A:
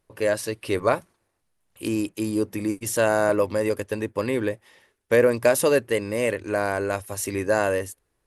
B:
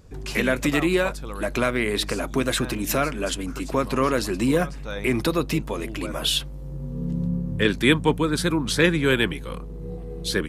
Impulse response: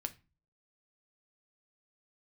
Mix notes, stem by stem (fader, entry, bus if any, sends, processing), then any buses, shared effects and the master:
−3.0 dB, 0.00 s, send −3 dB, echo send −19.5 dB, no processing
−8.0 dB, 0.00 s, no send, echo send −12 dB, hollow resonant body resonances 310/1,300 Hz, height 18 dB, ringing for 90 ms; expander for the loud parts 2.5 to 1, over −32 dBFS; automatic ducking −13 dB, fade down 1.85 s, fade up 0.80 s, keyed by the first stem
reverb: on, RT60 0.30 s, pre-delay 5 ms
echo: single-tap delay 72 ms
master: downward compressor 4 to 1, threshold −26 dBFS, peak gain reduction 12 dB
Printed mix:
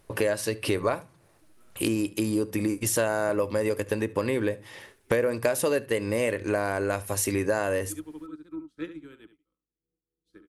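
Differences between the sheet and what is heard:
stem A −3.0 dB → +8.5 dB
stem B −8.0 dB → −14.5 dB

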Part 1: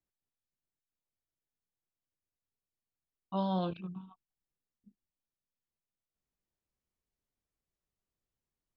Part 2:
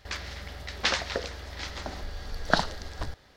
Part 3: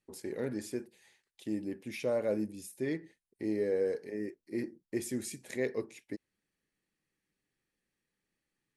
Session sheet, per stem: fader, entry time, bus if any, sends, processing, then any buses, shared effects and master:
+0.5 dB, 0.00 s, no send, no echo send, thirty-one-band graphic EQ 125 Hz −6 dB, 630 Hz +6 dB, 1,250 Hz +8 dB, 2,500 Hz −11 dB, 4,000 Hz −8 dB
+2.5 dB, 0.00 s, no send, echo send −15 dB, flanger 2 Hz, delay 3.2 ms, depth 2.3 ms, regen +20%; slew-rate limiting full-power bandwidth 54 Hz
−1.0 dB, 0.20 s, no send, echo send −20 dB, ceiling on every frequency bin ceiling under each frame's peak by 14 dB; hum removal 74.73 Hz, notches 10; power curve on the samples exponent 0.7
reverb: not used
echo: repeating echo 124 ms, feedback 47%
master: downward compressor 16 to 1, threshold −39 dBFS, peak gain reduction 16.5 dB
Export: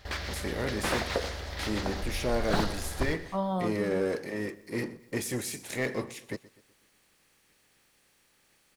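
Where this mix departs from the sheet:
stem 2: missing flanger 2 Hz, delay 3.2 ms, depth 2.3 ms, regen +20%
stem 3: missing hum removal 74.73 Hz, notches 10
master: missing downward compressor 16 to 1, threshold −39 dBFS, peak gain reduction 16.5 dB

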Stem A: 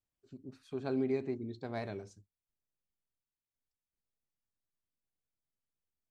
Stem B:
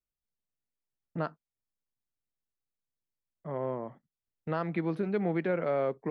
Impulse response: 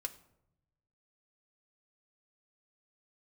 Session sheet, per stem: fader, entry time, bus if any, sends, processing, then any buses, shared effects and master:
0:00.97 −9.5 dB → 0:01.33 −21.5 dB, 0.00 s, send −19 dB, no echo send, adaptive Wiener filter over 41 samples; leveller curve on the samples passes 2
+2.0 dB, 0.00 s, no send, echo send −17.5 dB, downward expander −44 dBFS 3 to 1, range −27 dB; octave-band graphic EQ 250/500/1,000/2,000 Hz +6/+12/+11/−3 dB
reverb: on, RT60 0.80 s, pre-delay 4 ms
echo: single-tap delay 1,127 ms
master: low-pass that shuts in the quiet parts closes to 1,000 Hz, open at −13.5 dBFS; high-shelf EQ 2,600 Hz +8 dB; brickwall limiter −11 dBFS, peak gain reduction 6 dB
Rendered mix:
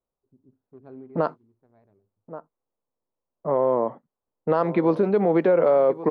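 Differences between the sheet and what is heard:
stem A: missing leveller curve on the samples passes 2
stem B: missing downward expander −44 dBFS 3 to 1, range −27 dB

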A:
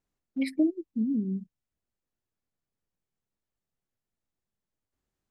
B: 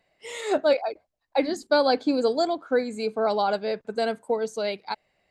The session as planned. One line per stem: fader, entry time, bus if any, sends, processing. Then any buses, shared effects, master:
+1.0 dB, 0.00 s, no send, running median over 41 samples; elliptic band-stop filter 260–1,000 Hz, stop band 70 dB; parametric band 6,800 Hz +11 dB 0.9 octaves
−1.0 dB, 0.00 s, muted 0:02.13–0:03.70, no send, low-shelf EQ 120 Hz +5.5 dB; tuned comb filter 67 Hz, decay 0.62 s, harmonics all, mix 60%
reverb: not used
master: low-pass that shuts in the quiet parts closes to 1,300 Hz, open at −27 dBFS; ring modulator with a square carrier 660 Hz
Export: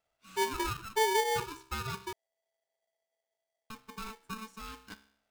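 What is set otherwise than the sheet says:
stem B −1.0 dB → −11.0 dB
master: missing low-pass that shuts in the quiet parts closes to 1,300 Hz, open at −27 dBFS

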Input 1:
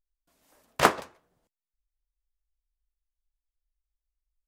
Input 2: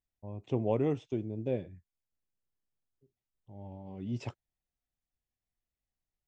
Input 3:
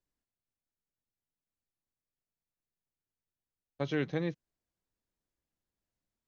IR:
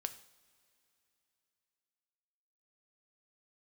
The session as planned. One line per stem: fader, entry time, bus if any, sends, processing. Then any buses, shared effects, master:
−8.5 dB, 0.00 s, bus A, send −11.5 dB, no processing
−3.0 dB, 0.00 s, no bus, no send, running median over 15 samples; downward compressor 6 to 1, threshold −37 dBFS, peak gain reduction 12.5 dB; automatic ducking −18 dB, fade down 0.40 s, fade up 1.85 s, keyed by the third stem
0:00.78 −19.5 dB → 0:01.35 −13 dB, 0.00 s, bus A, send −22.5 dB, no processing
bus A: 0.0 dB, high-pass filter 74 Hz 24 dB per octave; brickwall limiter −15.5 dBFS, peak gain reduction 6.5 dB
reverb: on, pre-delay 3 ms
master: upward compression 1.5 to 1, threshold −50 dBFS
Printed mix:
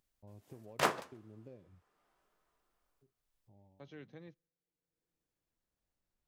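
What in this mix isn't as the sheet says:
stem 2 −3.0 dB → −13.0 dB
stem 3 −19.5 dB → −26.5 dB

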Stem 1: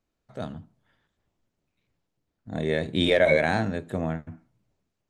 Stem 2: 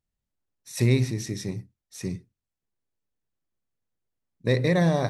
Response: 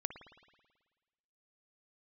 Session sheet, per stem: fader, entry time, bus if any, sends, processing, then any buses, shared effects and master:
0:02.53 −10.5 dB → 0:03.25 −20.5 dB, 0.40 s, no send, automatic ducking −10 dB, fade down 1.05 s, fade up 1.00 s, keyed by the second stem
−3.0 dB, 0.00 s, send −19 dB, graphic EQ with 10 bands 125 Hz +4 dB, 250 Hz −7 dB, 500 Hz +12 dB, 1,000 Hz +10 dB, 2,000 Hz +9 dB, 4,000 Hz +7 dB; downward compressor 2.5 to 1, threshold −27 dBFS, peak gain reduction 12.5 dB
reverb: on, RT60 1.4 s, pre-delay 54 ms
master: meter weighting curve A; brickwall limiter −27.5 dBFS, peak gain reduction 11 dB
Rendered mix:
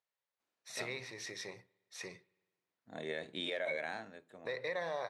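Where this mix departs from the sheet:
stem 1 −10.5 dB → −0.5 dB
stem 2 −3.0 dB → −12.0 dB

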